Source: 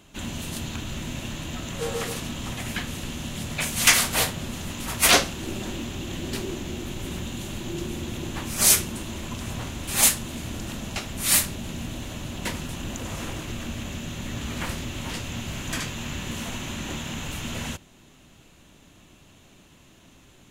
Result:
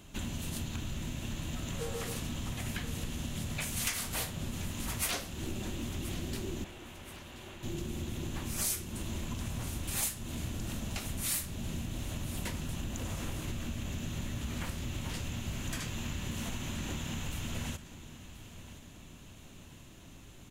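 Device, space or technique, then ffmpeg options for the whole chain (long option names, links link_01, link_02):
ASMR close-microphone chain: -filter_complex "[0:a]lowshelf=frequency=170:gain=7.5,acompressor=threshold=-31dB:ratio=6,highshelf=frequency=8200:gain=5,asettb=1/sr,asplit=3[link_01][link_02][link_03];[link_01]atrim=end=6.644[link_04];[link_02]atrim=start=6.64:end=7.63,asetpts=PTS-STARTPTS,afade=type=in:duration=0.004:curve=qsin,afade=type=out:start_time=0.986:duration=0.004:curve=qsin,acrossover=split=460 3200:gain=0.0794 1 0.2[link_05][link_06][link_07];[link_05][link_06][link_07]amix=inputs=3:normalize=0[link_08];[link_03]atrim=start=7.626[link_09];[link_04][link_08]acrossfade=duration=0.004:curve1=hsin:curve2=qsin[link_10];[link_10][link_09]acrossfade=duration=0.004:curve1=qsin:curve2=hsin,aecho=1:1:1028|2056|3084|4112:0.178|0.0818|0.0376|0.0173,volume=-3dB"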